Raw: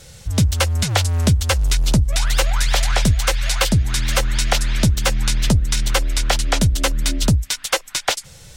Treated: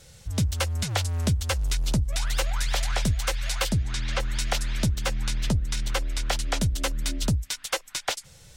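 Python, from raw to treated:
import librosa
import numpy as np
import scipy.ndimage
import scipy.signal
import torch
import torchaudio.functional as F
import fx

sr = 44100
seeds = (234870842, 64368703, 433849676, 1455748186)

y = fx.lowpass(x, sr, hz=fx.line((3.76, 9300.0), (4.19, 4400.0)), slope=12, at=(3.76, 4.19), fade=0.02)
y = fx.high_shelf(y, sr, hz=6200.0, db=-4.5, at=(4.86, 6.27))
y = y * librosa.db_to_amplitude(-8.5)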